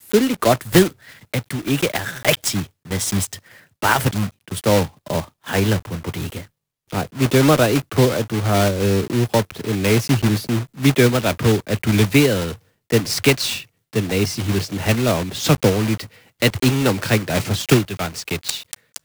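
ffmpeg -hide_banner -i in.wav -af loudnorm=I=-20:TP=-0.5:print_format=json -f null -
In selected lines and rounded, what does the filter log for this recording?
"input_i" : "-19.4",
"input_tp" : "-0.9",
"input_lra" : "3.1",
"input_thresh" : "-29.7",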